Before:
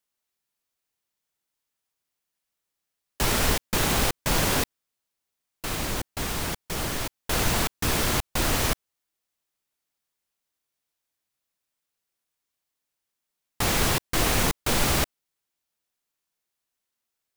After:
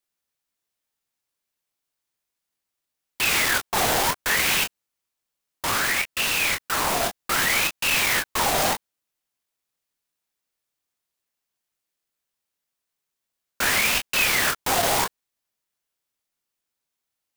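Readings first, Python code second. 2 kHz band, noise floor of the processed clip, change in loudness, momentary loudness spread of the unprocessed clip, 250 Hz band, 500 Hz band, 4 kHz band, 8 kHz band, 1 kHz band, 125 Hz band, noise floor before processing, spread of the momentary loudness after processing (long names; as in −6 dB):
+8.0 dB, −84 dBFS, +4.0 dB, 8 LU, −5.0 dB, +1.0 dB, +4.0 dB, +3.0 dB, +4.5 dB, −8.5 dB, −84 dBFS, 5 LU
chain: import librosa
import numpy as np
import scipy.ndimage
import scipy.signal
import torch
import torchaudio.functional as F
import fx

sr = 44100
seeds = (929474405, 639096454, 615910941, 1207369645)

y = 10.0 ** (-23.0 / 20.0) * np.tanh(x / 10.0 ** (-23.0 / 20.0))
y = fx.leveller(y, sr, passes=2)
y = fx.room_early_taps(y, sr, ms=(24, 36), db=(-4.5, -11.0))
y = fx.ring_lfo(y, sr, carrier_hz=1700.0, swing_pct=60, hz=0.64)
y = y * librosa.db_to_amplitude(5.5)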